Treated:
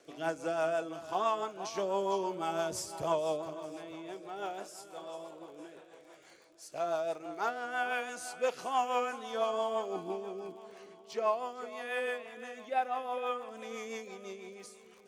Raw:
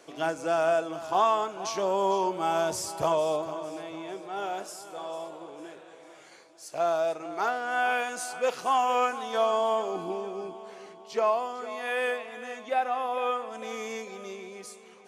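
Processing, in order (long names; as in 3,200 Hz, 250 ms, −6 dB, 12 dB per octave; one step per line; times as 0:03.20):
surface crackle 45 per second −44 dBFS
rotating-speaker cabinet horn 6 Hz
level −3.5 dB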